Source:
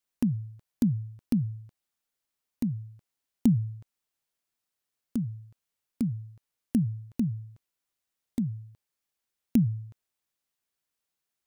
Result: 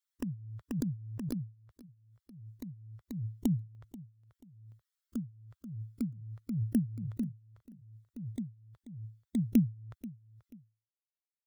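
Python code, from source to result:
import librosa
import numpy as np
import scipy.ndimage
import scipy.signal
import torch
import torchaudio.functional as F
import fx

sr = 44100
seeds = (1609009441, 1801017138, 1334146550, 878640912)

y = fx.bin_expand(x, sr, power=2.0)
y = fx.peak_eq(y, sr, hz=220.0, db=fx.steps((0.0, -7.5), (3.75, 3.0)), octaves=0.42)
y = fx.echo_feedback(y, sr, ms=485, feedback_pct=29, wet_db=-19)
y = fx.rider(y, sr, range_db=5, speed_s=2.0)
y = fx.peak_eq(y, sr, hz=93.0, db=-13.0, octaves=0.59)
y = fx.pre_swell(y, sr, db_per_s=39.0)
y = F.gain(torch.from_numpy(y), -4.0).numpy()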